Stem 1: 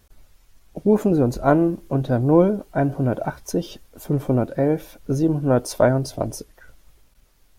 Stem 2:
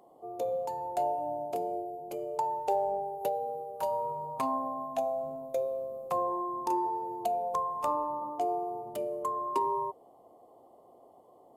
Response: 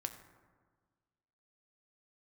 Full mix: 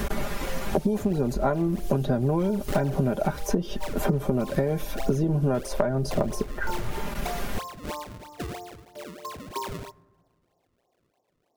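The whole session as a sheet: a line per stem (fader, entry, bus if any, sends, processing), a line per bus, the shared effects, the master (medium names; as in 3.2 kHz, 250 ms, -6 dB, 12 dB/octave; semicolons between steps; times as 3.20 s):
+1.5 dB, 0.00 s, no send, bass shelf 79 Hz +9.5 dB; comb 5 ms, depth 66%; three bands compressed up and down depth 100%
-4.0 dB, 0.00 s, send -9.5 dB, decimation with a swept rate 32×, swing 160% 3.1 Hz; upward expansion 1.5:1, over -52 dBFS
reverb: on, RT60 1.5 s, pre-delay 4 ms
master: compression 12:1, threshold -20 dBFS, peak gain reduction 13 dB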